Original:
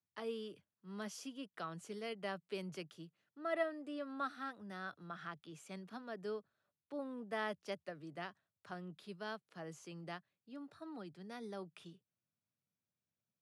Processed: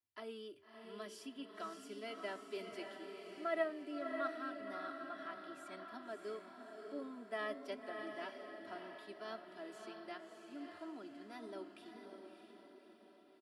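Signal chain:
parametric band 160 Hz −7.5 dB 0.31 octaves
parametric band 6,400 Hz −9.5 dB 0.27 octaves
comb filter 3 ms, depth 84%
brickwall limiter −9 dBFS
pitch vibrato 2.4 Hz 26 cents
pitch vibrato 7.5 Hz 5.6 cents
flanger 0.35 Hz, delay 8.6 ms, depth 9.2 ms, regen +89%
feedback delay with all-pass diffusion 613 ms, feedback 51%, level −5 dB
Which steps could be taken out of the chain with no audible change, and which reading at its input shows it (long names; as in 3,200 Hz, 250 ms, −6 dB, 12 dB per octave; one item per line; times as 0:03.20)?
brickwall limiter −9 dBFS: peak of its input −20.5 dBFS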